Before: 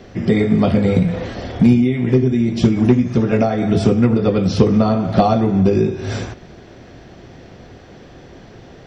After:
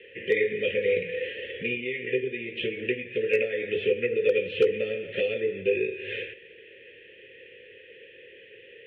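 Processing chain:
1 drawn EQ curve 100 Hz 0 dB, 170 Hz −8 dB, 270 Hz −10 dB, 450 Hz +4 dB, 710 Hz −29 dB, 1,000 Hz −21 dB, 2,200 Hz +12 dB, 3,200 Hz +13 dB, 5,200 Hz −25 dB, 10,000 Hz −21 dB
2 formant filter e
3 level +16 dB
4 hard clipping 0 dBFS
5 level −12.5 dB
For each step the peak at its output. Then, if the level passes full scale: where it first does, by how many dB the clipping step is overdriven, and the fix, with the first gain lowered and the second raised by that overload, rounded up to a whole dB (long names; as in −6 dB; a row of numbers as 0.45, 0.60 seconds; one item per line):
−1.5, −13.0, +3.0, 0.0, −12.5 dBFS
step 3, 3.0 dB
step 3 +13 dB, step 5 −9.5 dB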